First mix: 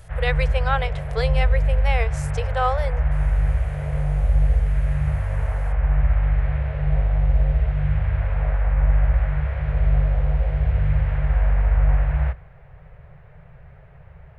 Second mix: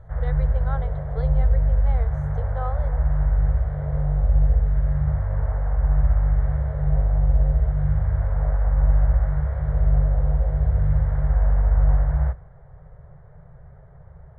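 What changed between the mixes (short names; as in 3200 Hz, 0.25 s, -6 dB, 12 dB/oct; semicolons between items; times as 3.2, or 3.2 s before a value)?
speech -8.5 dB; master: add running mean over 17 samples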